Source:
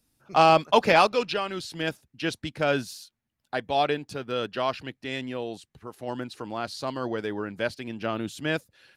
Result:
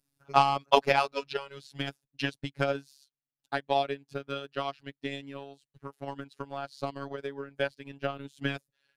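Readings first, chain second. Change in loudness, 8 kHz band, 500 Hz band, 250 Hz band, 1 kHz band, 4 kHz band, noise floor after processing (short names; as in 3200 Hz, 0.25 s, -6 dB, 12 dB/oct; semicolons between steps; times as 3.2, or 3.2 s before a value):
-5.0 dB, n/a, -5.5 dB, -7.0 dB, -4.5 dB, -4.5 dB, under -85 dBFS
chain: transient shaper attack +12 dB, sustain -9 dB; robotiser 139 Hz; gain -7.5 dB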